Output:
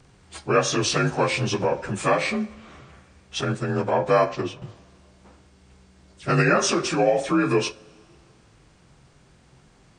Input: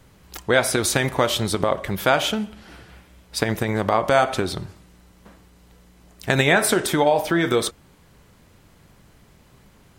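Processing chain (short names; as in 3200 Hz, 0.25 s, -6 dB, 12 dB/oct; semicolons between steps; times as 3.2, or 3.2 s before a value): inharmonic rescaling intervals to 87%; 3.41–4.62 expander -22 dBFS; two-slope reverb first 0.22 s, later 2.3 s, from -21 dB, DRR 12.5 dB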